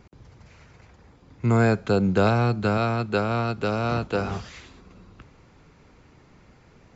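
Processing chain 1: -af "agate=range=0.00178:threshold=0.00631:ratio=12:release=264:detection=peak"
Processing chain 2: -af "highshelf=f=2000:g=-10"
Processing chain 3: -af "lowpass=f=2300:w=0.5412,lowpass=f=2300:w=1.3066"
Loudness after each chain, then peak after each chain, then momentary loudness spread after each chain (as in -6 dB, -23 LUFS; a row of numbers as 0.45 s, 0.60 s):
-23.5 LUFS, -24.5 LUFS, -24.0 LUFS; -8.0 dBFS, -9.0 dBFS, -8.0 dBFS; 8 LU, 8 LU, 8 LU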